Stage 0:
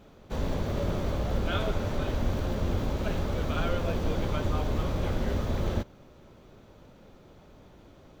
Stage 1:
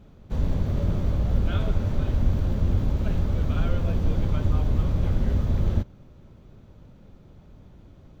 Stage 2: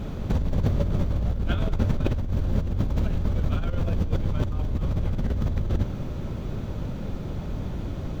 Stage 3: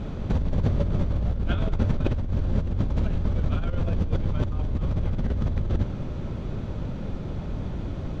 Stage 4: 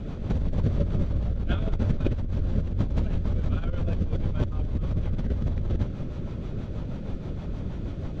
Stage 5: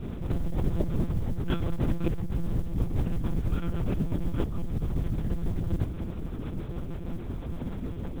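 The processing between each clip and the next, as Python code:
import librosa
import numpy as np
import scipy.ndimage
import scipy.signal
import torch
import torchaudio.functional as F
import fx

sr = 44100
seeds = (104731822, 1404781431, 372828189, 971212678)

y1 = fx.bass_treble(x, sr, bass_db=12, treble_db=-1)
y1 = F.gain(torch.from_numpy(y1), -4.5).numpy()
y2 = fx.over_compress(y1, sr, threshold_db=-32.0, ratio=-1.0)
y2 = F.gain(torch.from_numpy(y2), 8.5).numpy()
y3 = fx.air_absorb(y2, sr, metres=68.0)
y4 = fx.rotary(y3, sr, hz=6.3)
y5 = fx.lpc_monotone(y4, sr, seeds[0], pitch_hz=170.0, order=8)
y5 = fx.mod_noise(y5, sr, seeds[1], snr_db=34)
y5 = F.gain(torch.from_numpy(y5), -2.0).numpy()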